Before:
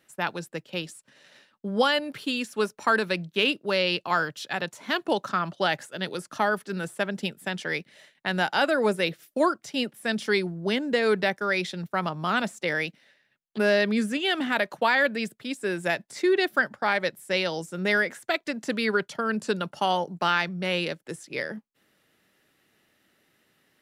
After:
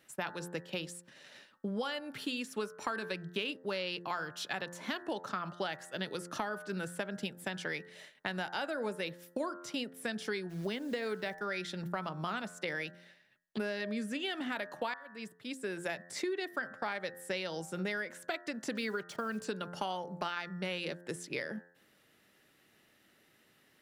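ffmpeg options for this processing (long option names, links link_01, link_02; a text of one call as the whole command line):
ffmpeg -i in.wav -filter_complex "[0:a]asplit=3[link_01][link_02][link_03];[link_01]afade=type=out:start_time=10.49:duration=0.02[link_04];[link_02]acrusher=bits=9:dc=4:mix=0:aa=0.000001,afade=type=in:start_time=10.49:duration=0.02,afade=type=out:start_time=11.39:duration=0.02[link_05];[link_03]afade=type=in:start_time=11.39:duration=0.02[link_06];[link_04][link_05][link_06]amix=inputs=3:normalize=0,asettb=1/sr,asplit=3[link_07][link_08][link_09];[link_07]atrim=end=18.754[link_10];[link_08]atrim=start=18.75:end=19.45,asetpts=PTS-STARTPTS,afade=type=in:duration=0.004:curve=qsin,afade=type=out:start_time=0.696:duration=0.004:curve=qsin,acrusher=bits=7:mix=0:aa=0.5[link_11];[link_09]atrim=start=19.446[link_12];[link_10][link_11]acrossfade=duration=0.004:curve1=hsin:curve2=qsin[link_13];[link_13][link_12]acrossfade=duration=0.004:curve1=qsin:curve2=hsin,asplit=2[link_14][link_15];[link_14]atrim=end=14.94,asetpts=PTS-STARTPTS,afade=type=out:start_time=14.936:duration=0.004:curve=hsin[link_16];[link_15]atrim=start=14.94,asetpts=PTS-STARTPTS,afade=type=in:duration=1.37[link_17];[link_16][link_17]concat=n=2:v=0:a=1,bandreject=frequency=87.48:width_type=h:width=4,bandreject=frequency=174.96:width_type=h:width=4,bandreject=frequency=262.44:width_type=h:width=4,bandreject=frequency=349.92:width_type=h:width=4,bandreject=frequency=437.4:width_type=h:width=4,bandreject=frequency=524.88:width_type=h:width=4,bandreject=frequency=612.36:width_type=h:width=4,bandreject=frequency=699.84:width_type=h:width=4,bandreject=frequency=787.32:width_type=h:width=4,bandreject=frequency=874.8:width_type=h:width=4,bandreject=frequency=962.28:width_type=h:width=4,bandreject=frequency=1049.76:width_type=h:width=4,bandreject=frequency=1137.24:width_type=h:width=4,bandreject=frequency=1224.72:width_type=h:width=4,bandreject=frequency=1312.2:width_type=h:width=4,bandreject=frequency=1399.68:width_type=h:width=4,bandreject=frequency=1487.16:width_type=h:width=4,bandreject=frequency=1574.64:width_type=h:width=4,bandreject=frequency=1662.12:width_type=h:width=4,bandreject=frequency=1749.6:width_type=h:width=4,bandreject=frequency=1837.08:width_type=h:width=4,bandreject=frequency=1924.56:width_type=h:width=4,acompressor=threshold=-34dB:ratio=6" out.wav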